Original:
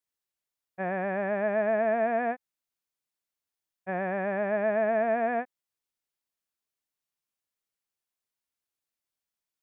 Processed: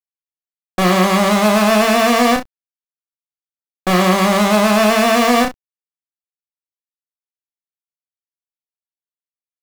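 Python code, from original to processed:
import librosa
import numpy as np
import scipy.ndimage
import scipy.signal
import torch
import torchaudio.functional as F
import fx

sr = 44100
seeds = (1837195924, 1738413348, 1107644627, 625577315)

y = fx.diode_clip(x, sr, knee_db=-30.5)
y = fx.small_body(y, sr, hz=(200.0, 310.0, 2100.0), ring_ms=25, db=9)
y = fx.fuzz(y, sr, gain_db=54.0, gate_db=-49.0)
y = fx.quant_dither(y, sr, seeds[0], bits=6, dither='none')
y = fx.room_early_taps(y, sr, ms=(33, 64), db=(-4.5, -13.5))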